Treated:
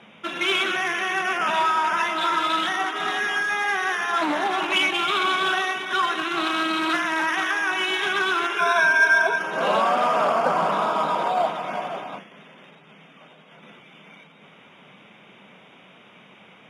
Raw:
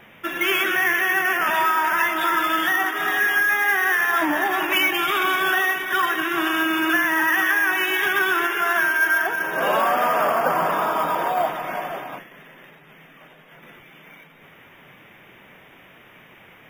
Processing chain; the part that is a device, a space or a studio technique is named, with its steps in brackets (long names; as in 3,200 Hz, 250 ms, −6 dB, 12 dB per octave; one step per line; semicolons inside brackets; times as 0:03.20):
full-range speaker at full volume (highs frequency-modulated by the lows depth 0.18 ms; loudspeaker in its box 160–8,800 Hz, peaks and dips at 200 Hz +7 dB, 330 Hz −4 dB, 1,800 Hz −9 dB, 4,000 Hz +8 dB)
0:08.58–0:09.38: EQ curve with evenly spaced ripples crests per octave 1.6, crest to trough 15 dB